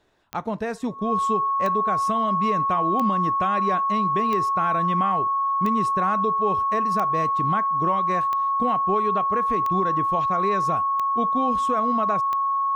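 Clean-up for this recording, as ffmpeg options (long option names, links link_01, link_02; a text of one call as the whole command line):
ffmpeg -i in.wav -af "adeclick=threshold=4,bandreject=frequency=1100:width=30" out.wav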